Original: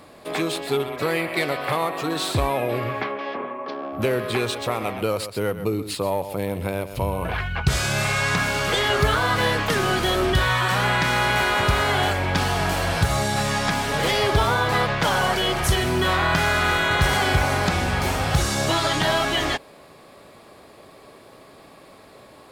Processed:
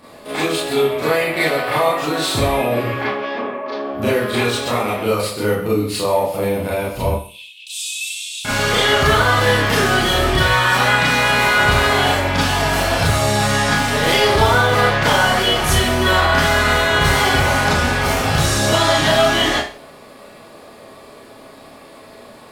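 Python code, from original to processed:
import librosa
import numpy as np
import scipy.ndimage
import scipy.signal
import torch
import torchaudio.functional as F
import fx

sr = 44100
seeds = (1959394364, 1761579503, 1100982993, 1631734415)

y = fx.cheby_ripple_highpass(x, sr, hz=2500.0, ripple_db=9, at=(7.11, 8.45))
y = fx.rev_schroeder(y, sr, rt60_s=0.38, comb_ms=26, drr_db=-8.0)
y = y * librosa.db_to_amplitude(-2.0)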